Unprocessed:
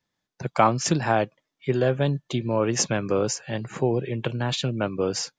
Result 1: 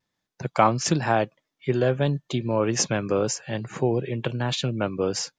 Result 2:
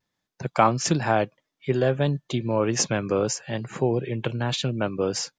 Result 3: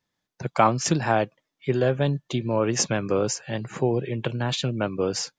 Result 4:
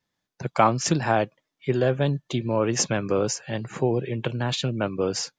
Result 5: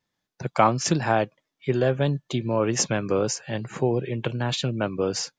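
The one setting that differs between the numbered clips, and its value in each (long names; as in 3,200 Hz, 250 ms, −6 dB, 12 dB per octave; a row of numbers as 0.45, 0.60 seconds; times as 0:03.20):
pitch vibrato, speed: 1, 0.64, 8.5, 15, 4.4 Hertz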